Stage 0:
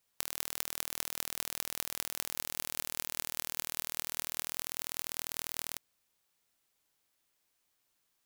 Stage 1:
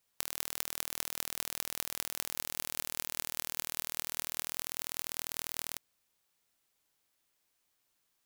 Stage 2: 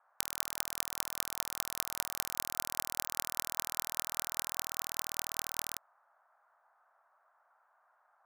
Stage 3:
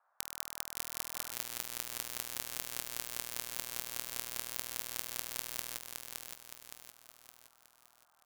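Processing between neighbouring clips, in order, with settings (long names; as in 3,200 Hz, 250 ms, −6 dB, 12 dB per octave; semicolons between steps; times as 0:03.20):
no processing that can be heard
power curve on the samples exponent 1.4; noise in a band 630–1,500 Hz −73 dBFS; level +2 dB
repeating echo 566 ms, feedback 47%, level −4 dB; level −4.5 dB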